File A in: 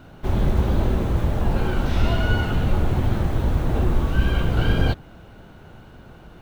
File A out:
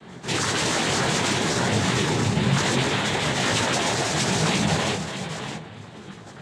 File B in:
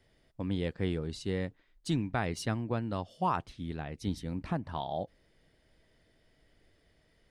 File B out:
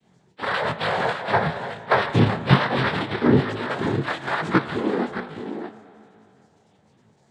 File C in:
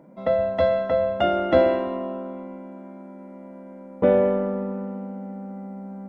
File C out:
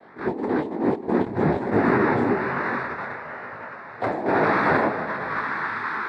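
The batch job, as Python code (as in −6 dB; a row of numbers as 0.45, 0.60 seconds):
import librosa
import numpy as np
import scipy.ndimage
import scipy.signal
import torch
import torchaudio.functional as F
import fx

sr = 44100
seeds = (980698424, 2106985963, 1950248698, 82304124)

p1 = fx.octave_mirror(x, sr, pivot_hz=500.0)
p2 = fx.high_shelf(p1, sr, hz=2400.0, db=-7.0)
p3 = p2 + 0.96 * np.pad(p2, (int(5.4 * sr / 1000.0), 0))[:len(p2)]
p4 = np.clip(p3, -10.0 ** (-18.0 / 20.0), 10.0 ** (-18.0 / 20.0))
p5 = p3 + F.gain(torch.from_numpy(p4), -9.5).numpy()
p6 = fx.level_steps(p5, sr, step_db=9)
p7 = p6 + fx.echo_single(p6, sr, ms=617, db=-9.0, dry=0)
p8 = fx.noise_vocoder(p7, sr, seeds[0], bands=6)
p9 = fx.rev_spring(p8, sr, rt60_s=2.8, pass_ms=(37,), chirp_ms=20, drr_db=12.0)
p10 = fx.over_compress(p9, sr, threshold_db=-24.0, ratio=-0.5)
p11 = fx.detune_double(p10, sr, cents=39)
y = p11 * 10.0 ** (-24 / 20.0) / np.sqrt(np.mean(np.square(p11)))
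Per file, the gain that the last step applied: +8.0, +16.5, +6.5 decibels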